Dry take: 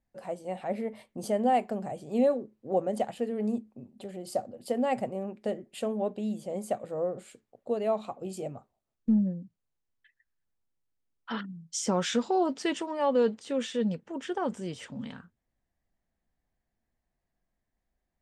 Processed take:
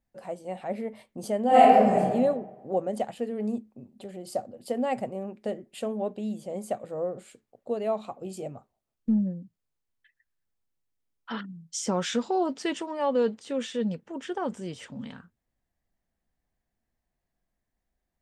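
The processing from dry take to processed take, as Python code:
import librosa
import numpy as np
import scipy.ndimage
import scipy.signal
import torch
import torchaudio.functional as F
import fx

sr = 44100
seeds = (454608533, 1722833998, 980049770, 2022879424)

y = fx.reverb_throw(x, sr, start_s=1.47, length_s=0.52, rt60_s=1.3, drr_db=-11.5)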